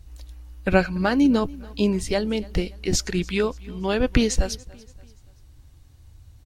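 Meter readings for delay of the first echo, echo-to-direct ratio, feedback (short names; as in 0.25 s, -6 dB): 0.287 s, -21.5 dB, 43%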